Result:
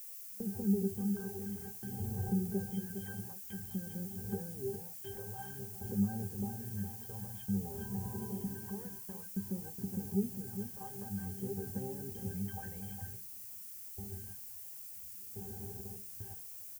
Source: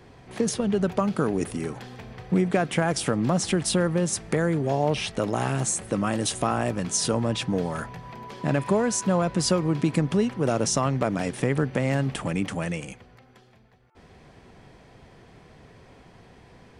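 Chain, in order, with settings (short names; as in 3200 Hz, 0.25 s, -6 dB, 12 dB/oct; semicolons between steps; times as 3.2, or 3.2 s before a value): opening faded in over 1.78 s; in parallel at -2.5 dB: level quantiser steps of 24 dB; on the sum: limiter -15.5 dBFS, peak gain reduction 9 dB; compressor 12:1, threshold -37 dBFS, peak gain reduction 17.5 dB; phaser stages 2, 0.53 Hz, lowest notch 210–3500 Hz; octave resonator G, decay 0.2 s; feedback echo 0.41 s, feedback 37%, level -9 dB; gate with hold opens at -51 dBFS; air absorption 180 m; added noise violet -62 dBFS; bell 3700 Hz -9.5 dB 0.51 oct; gain +14 dB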